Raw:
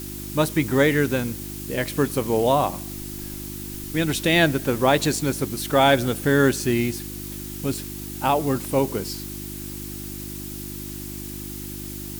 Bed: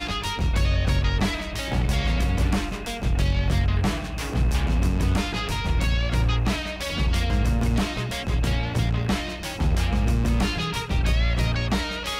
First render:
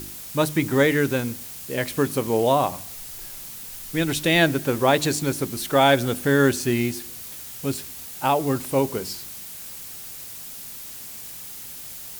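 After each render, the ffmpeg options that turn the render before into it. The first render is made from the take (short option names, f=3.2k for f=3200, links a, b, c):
-af "bandreject=f=50:t=h:w=4,bandreject=f=100:t=h:w=4,bandreject=f=150:t=h:w=4,bandreject=f=200:t=h:w=4,bandreject=f=250:t=h:w=4,bandreject=f=300:t=h:w=4,bandreject=f=350:t=h:w=4"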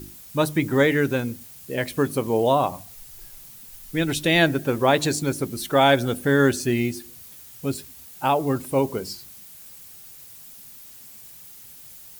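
-af "afftdn=nr=9:nf=-38"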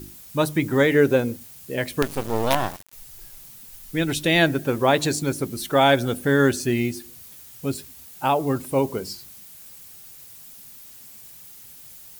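-filter_complex "[0:a]asettb=1/sr,asplit=3[a][b][c];[a]atrim=end=0.944[d];[b]atrim=start=0.94:end=1.37,asetpts=PTS-STARTPTS,afade=t=in:d=0.004:c=qsin,afade=t=out:st=0.426:d=0.004:c=qsin,equalizer=f=510:t=o:w=1.3:g=8[e];[c]atrim=start=1.366[f];[d][e]acrossfade=d=0.004:c1=hsin:c2=qsin[g];[g][f]acrossfade=d=0.004:c1=qsin:c2=hsin,asettb=1/sr,asplit=3[h][i][j];[h]atrim=end=2.024[k];[i]atrim=start=2.02:end=2.93,asetpts=PTS-STARTPTS,afade=t=in:d=0.004:c=qsin,afade=t=out:st=0.906:d=0.004:c=qsin,acrusher=bits=3:dc=4:mix=0:aa=0.000001[l];[j]atrim=start=2.926[m];[k][l]acrossfade=d=0.004:c1=hsin:c2=qsin[n];[n][m]acrossfade=d=0.004:c1=qsin:c2=hsin"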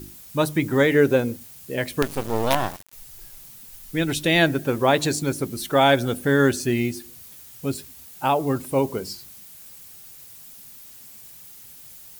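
-af anull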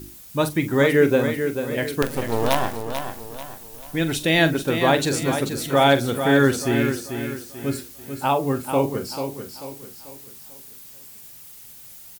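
-filter_complex "[0:a]asplit=2[a][b];[b]adelay=43,volume=-11.5dB[c];[a][c]amix=inputs=2:normalize=0,aecho=1:1:440|880|1320|1760|2200:0.398|0.159|0.0637|0.0255|0.0102"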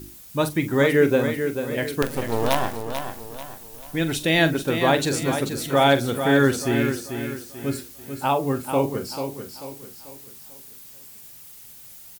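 -af "volume=-1dB"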